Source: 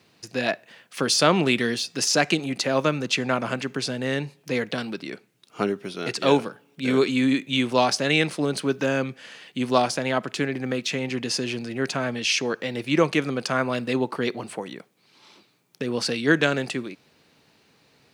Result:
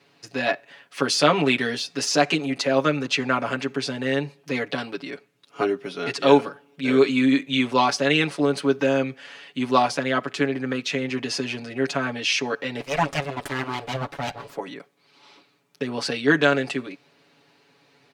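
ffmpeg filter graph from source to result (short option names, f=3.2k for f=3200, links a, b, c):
-filter_complex "[0:a]asettb=1/sr,asplit=3[a][b][c];[a]atrim=end=12.804[d];[b]atrim=start=12.8:end=14.56,asetpts=PTS-STARTPTS,afade=t=in:d=0.004:c=qsin,afade=t=out:st=1.756:d=0.004:c=qsin,equalizer=f=1.2k:t=o:w=0.69:g=-7.5,aeval=exprs='abs(val(0))':c=same[e];[c]atrim=start=14.556[f];[d][e]acrossfade=d=0.004:c1=hsin:c2=qsin[g];[g][f]acrossfade=d=0.004:c1=qsin:c2=hsin,highpass=f=270:p=1,aemphasis=mode=reproduction:type=cd,aecho=1:1:7.1:0.96"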